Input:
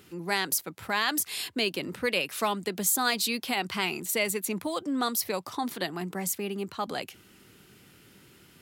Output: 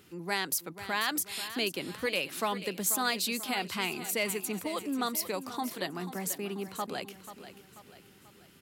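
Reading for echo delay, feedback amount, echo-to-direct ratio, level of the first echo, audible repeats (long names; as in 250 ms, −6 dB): 487 ms, 46%, −11.5 dB, −12.5 dB, 4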